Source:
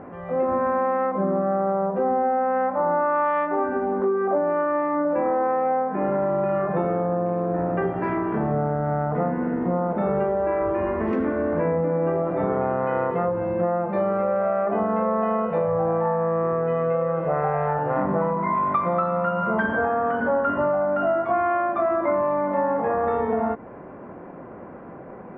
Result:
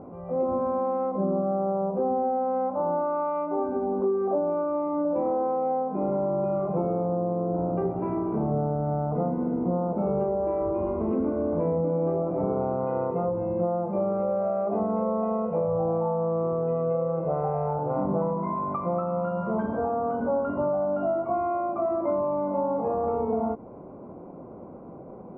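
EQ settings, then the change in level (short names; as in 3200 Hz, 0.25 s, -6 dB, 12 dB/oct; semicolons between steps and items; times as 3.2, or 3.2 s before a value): running mean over 25 samples; air absorption 78 m; -1.5 dB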